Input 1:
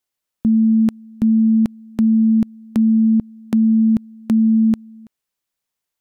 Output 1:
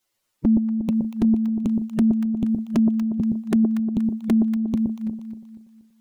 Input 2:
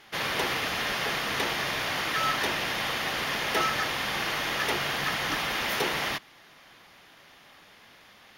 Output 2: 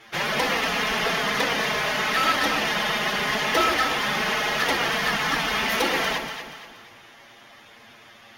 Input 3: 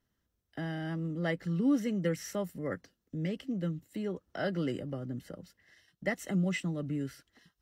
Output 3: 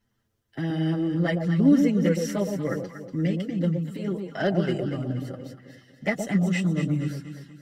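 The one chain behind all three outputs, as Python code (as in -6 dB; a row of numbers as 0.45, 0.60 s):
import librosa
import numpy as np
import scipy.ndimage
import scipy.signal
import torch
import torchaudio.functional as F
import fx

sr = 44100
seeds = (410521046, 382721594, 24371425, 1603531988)

p1 = fx.spec_quant(x, sr, step_db=15)
p2 = fx.high_shelf(p1, sr, hz=11000.0, db=-3.5)
p3 = fx.env_flanger(p2, sr, rest_ms=9.0, full_db=-12.5)
p4 = fx.over_compress(p3, sr, threshold_db=-23.0, ratio=-0.5)
p5 = p3 + (p4 * librosa.db_to_amplitude(0.5))
p6 = fx.echo_alternate(p5, sr, ms=119, hz=870.0, feedback_pct=63, wet_db=-4.5)
y = librosa.util.normalize(p6) * 10.0 ** (-9 / 20.0)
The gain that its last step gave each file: -3.5, +1.5, +3.5 dB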